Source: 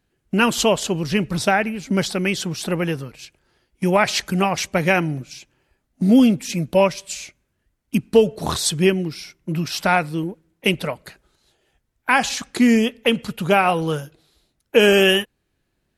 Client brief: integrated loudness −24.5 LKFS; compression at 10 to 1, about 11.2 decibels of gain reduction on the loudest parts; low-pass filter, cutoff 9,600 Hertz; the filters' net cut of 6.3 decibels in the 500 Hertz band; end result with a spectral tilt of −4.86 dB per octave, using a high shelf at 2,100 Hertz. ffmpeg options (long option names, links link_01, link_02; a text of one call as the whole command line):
ffmpeg -i in.wav -af "lowpass=9600,equalizer=frequency=500:width_type=o:gain=-7.5,highshelf=frequency=2100:gain=-8.5,acompressor=threshold=-23dB:ratio=10,volume=5dB" out.wav